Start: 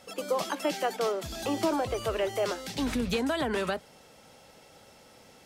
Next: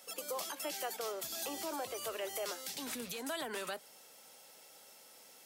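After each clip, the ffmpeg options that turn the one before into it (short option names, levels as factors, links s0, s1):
-af "highpass=f=210:p=1,aemphasis=mode=production:type=bsi,alimiter=limit=0.0708:level=0:latency=1:release=161,volume=0.473"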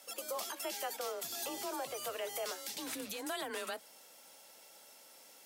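-af "afreqshift=28"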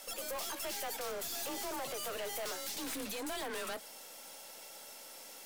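-af "aeval=exprs='(tanh(200*val(0)+0.35)-tanh(0.35))/200':c=same,volume=2.66"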